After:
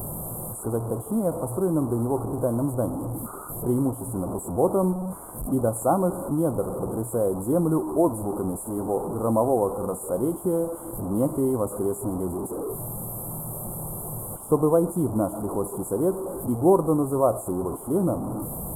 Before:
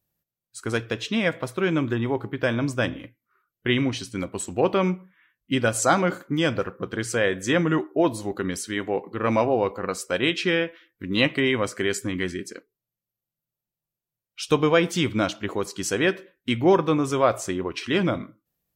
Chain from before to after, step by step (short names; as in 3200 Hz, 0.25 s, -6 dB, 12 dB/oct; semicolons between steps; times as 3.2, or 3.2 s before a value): delta modulation 64 kbps, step -23 dBFS; inverse Chebyshev band-stop 1700–6100 Hz, stop band 40 dB